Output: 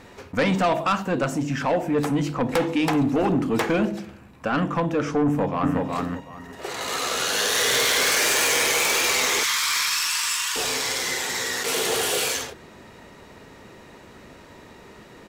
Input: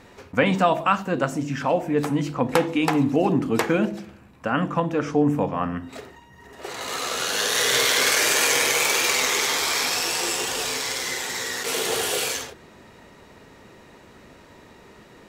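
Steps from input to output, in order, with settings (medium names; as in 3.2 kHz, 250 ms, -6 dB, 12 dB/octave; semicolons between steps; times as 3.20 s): 9.43–10.56 s: steep high-pass 950 Hz 96 dB/octave; saturation -18 dBFS, distortion -12 dB; 5.26–5.83 s: echo throw 370 ms, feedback 20%, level -2.5 dB; trim +2.5 dB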